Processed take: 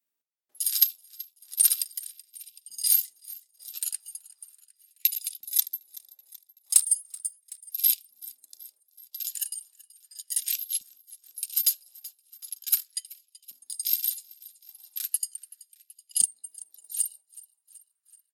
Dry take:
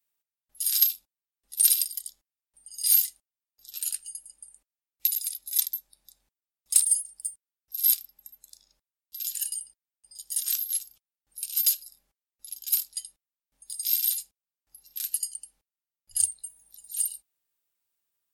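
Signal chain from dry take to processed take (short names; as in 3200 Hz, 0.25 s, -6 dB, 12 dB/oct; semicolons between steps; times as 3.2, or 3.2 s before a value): feedback echo 0.379 s, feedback 56%, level -18.5 dB; transient shaper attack +6 dB, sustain -6 dB; LFO high-pass saw up 0.37 Hz 220–3100 Hz; gain -4 dB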